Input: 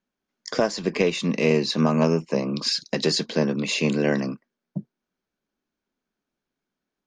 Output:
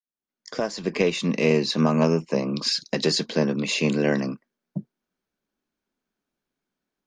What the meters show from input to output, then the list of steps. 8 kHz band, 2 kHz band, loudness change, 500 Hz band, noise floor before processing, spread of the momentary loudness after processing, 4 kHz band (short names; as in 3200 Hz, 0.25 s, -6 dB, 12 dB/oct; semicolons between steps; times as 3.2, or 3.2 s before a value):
-0.5 dB, -0.5 dB, 0.0 dB, -0.5 dB, under -85 dBFS, 15 LU, 0.0 dB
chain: opening faded in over 1.07 s